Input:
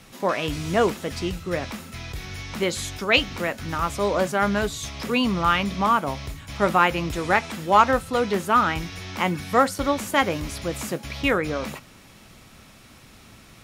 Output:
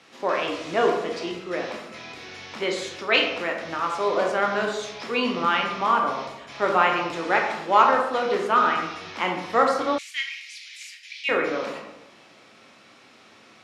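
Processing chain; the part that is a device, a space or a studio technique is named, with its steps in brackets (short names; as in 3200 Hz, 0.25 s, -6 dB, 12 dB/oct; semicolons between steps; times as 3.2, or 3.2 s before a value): supermarket ceiling speaker (BPF 330–5300 Hz; reverb RT60 0.95 s, pre-delay 15 ms, DRR 1 dB); 9.98–11.29 elliptic high-pass 2100 Hz, stop band 70 dB; gain -2 dB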